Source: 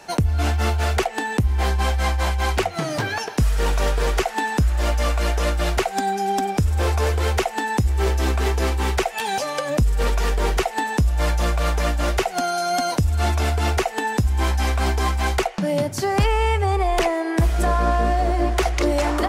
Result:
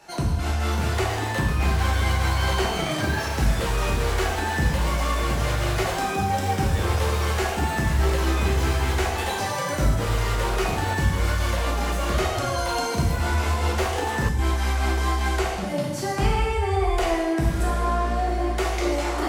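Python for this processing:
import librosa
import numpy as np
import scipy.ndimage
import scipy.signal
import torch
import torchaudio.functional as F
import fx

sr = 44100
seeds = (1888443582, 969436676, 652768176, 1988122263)

y = fx.rev_gated(x, sr, seeds[0], gate_ms=370, shape='falling', drr_db=-5.0)
y = fx.dmg_tone(y, sr, hz=3100.0, level_db=-26.0, at=(2.37, 3.01), fade=0.02)
y = fx.echo_pitch(y, sr, ms=649, semitones=6, count=3, db_per_echo=-6.0)
y = y * librosa.db_to_amplitude(-9.0)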